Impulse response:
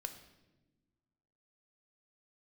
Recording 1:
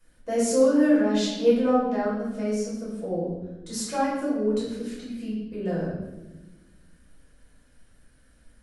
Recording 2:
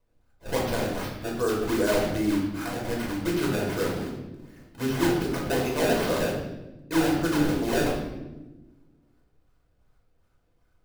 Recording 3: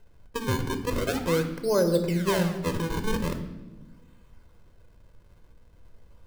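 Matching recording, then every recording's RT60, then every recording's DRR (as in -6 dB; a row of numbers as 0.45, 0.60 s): 3; 1.1, 1.1, 1.2 s; -8.5, -3.0, 6.5 dB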